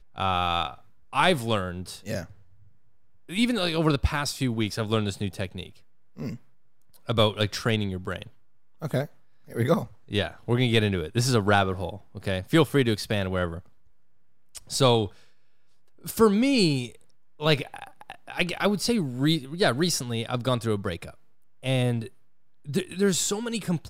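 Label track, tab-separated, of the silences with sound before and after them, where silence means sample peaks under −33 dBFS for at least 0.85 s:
2.240000	3.300000	silence
13.590000	14.550000	silence
15.080000	16.060000	silence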